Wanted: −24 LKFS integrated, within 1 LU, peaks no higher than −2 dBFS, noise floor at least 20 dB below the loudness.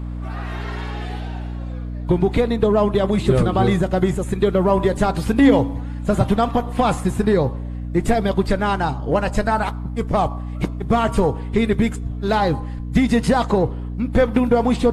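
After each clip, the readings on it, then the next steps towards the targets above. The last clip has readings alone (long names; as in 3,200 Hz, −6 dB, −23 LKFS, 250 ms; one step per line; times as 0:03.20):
mains hum 60 Hz; hum harmonics up to 300 Hz; level of the hum −25 dBFS; integrated loudness −20.0 LKFS; sample peak −3.0 dBFS; target loudness −24.0 LKFS
→ mains-hum notches 60/120/180/240/300 Hz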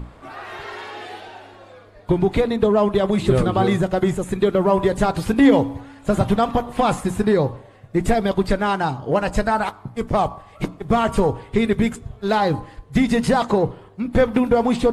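mains hum none found; integrated loudness −20.0 LKFS; sample peak −3.0 dBFS; target loudness −24.0 LKFS
→ level −4 dB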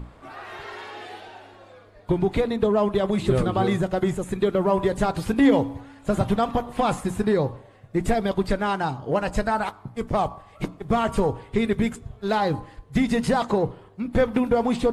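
integrated loudness −24.0 LKFS; sample peak −7.0 dBFS; background noise floor −50 dBFS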